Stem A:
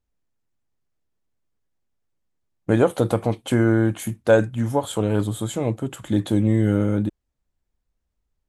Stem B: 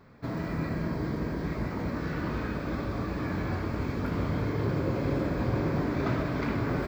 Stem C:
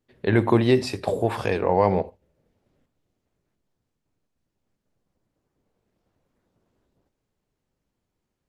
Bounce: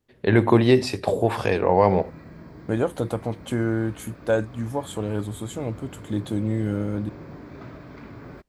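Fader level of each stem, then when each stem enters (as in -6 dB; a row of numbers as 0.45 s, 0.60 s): -6.0 dB, -12.0 dB, +2.0 dB; 0.00 s, 1.55 s, 0.00 s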